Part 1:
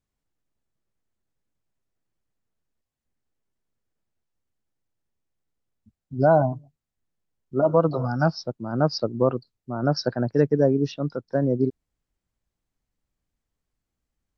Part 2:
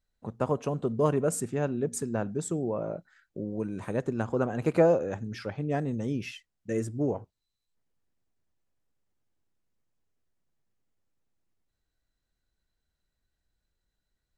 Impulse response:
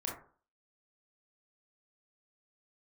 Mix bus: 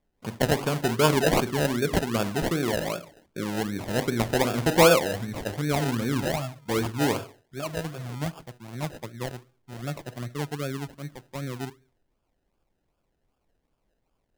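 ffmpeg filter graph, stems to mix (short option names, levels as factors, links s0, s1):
-filter_complex "[0:a]equalizer=f=125:t=o:w=1:g=-3,equalizer=f=250:t=o:w=1:g=-8,equalizer=f=500:t=o:w=1:g=-9,equalizer=f=1000:t=o:w=1:g=-8,equalizer=f=2000:t=o:w=1:g=-4,equalizer=f=4000:t=o:w=1:g=-11,volume=0.668,asplit=2[s0][s1];[s1]volume=0.158[s2];[1:a]highshelf=f=3500:g=11,volume=1.12,asplit=2[s3][s4];[s4]volume=0.447[s5];[2:a]atrim=start_sample=2205[s6];[s2][s5]amix=inputs=2:normalize=0[s7];[s7][s6]afir=irnorm=-1:irlink=0[s8];[s0][s3][s8]amix=inputs=3:normalize=0,acrusher=samples=31:mix=1:aa=0.000001:lfo=1:lforange=18.6:lforate=2.6"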